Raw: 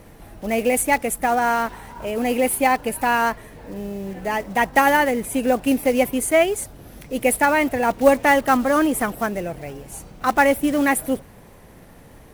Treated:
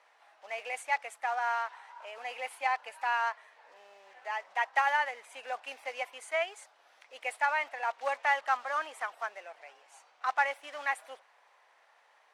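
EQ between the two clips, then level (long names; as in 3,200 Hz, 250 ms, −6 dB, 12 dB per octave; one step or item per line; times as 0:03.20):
high-pass filter 780 Hz 24 dB per octave
high-frequency loss of the air 120 metres
−8.5 dB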